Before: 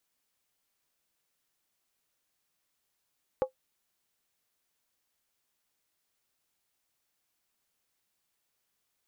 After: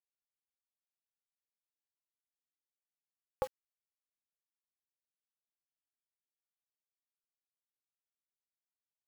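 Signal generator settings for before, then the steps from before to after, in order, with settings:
skin hit, lowest mode 520 Hz, decay 0.11 s, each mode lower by 9 dB, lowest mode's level -19 dB
bell 350 Hz -11.5 dB 1.8 oct; in parallel at +1 dB: limiter -28.5 dBFS; on the sum: bit-crush 8-bit

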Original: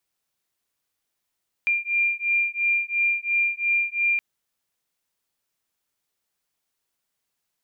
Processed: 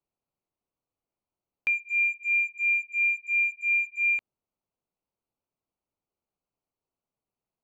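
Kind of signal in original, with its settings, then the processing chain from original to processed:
beating tones 2390 Hz, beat 2.9 Hz, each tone -23.5 dBFS 2.52 s
Wiener smoothing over 25 samples

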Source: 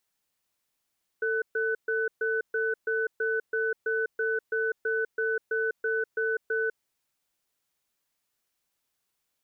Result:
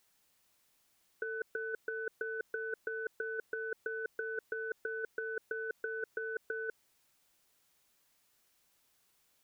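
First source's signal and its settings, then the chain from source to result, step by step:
cadence 446 Hz, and 1500 Hz, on 0.20 s, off 0.13 s, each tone -27.5 dBFS 5.53 s
limiter -25 dBFS; negative-ratio compressor -36 dBFS, ratio -0.5

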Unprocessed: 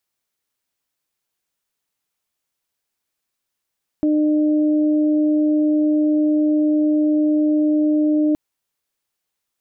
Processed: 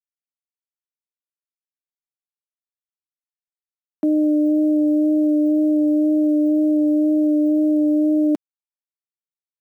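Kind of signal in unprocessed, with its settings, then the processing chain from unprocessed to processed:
steady additive tone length 4.32 s, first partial 303 Hz, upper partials -12 dB, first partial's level -14 dB
steep high-pass 190 Hz 36 dB/oct; vibrato 2 Hz 16 cents; sample gate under -40.5 dBFS

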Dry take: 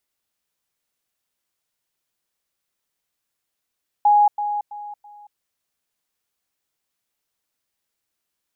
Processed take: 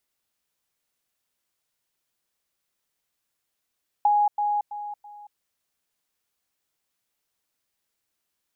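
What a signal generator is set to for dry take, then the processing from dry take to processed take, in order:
level ladder 829 Hz -11 dBFS, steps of -10 dB, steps 4, 0.23 s 0.10 s
compressor, threshold -19 dBFS

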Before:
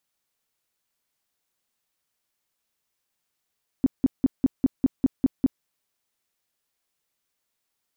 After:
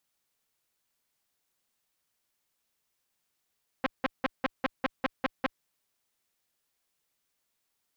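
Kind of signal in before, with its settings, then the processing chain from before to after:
tone bursts 264 Hz, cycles 6, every 0.20 s, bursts 9, -14 dBFS
core saturation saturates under 1400 Hz

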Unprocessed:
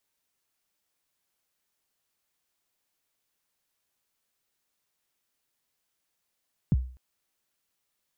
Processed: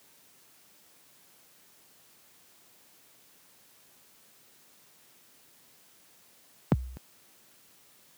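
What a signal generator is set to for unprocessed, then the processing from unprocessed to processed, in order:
kick drum length 0.25 s, from 210 Hz, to 63 Hz, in 32 ms, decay 0.43 s, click off, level -16 dB
HPF 130 Hz 12 dB/oct; low shelf 420 Hz +7.5 dB; spectral compressor 2:1

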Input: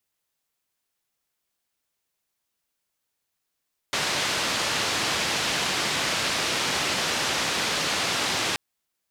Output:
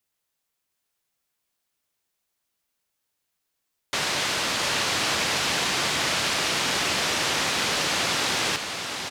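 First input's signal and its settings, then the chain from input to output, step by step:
noise band 100–4700 Hz, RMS -26 dBFS 4.63 s
echo 0.701 s -6 dB

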